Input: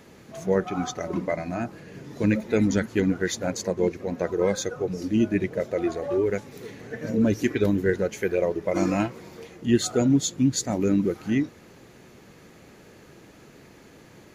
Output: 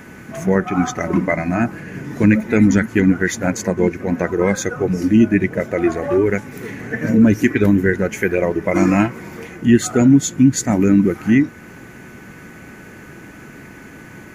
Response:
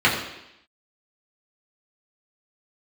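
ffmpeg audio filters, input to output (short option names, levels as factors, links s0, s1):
-filter_complex "[0:a]equalizer=f=250:t=o:w=1:g=3,equalizer=f=500:t=o:w=1:g=-6,equalizer=f=2000:t=o:w=1:g=6,equalizer=f=4000:t=o:w=1:g=-11,asplit=2[s0][s1];[s1]alimiter=limit=0.119:level=0:latency=1:release=353,volume=1.33[s2];[s0][s2]amix=inputs=2:normalize=0,aeval=exprs='val(0)+0.00316*sin(2*PI*1500*n/s)':c=same,volume=1.58"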